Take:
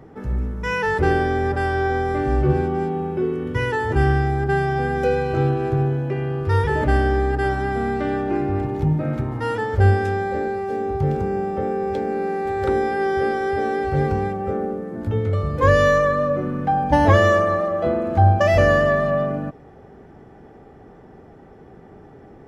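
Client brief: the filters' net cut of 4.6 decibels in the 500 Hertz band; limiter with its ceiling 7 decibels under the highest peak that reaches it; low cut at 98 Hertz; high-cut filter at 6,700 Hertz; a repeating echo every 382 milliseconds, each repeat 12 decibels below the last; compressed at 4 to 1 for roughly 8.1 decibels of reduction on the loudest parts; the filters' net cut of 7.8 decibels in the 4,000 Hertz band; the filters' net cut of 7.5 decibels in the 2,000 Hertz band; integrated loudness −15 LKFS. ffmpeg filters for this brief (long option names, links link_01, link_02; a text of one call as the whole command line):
ffmpeg -i in.wav -af "highpass=98,lowpass=6700,equalizer=frequency=500:width_type=o:gain=-5.5,equalizer=frequency=2000:width_type=o:gain=-8,equalizer=frequency=4000:width_type=o:gain=-7,acompressor=threshold=-23dB:ratio=4,alimiter=limit=-19.5dB:level=0:latency=1,aecho=1:1:382|764|1146:0.251|0.0628|0.0157,volume=13.5dB" out.wav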